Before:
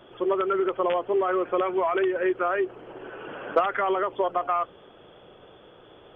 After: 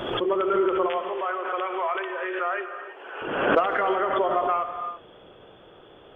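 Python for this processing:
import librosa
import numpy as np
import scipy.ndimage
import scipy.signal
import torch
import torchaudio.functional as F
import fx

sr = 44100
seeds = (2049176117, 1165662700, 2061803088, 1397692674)

y = fx.highpass(x, sr, hz=720.0, slope=12, at=(0.86, 3.22))
y = fx.rev_gated(y, sr, seeds[0], gate_ms=380, shape='flat', drr_db=6.5)
y = fx.pre_swell(y, sr, db_per_s=46.0)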